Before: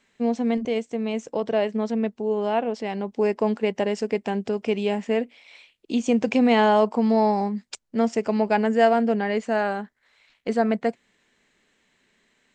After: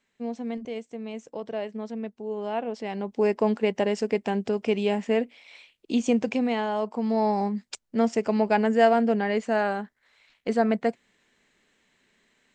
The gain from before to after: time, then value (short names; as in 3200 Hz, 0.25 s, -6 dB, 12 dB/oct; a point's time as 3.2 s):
2.14 s -9 dB
3.28 s -0.5 dB
6.05 s -0.5 dB
6.67 s -10.5 dB
7.47 s -1 dB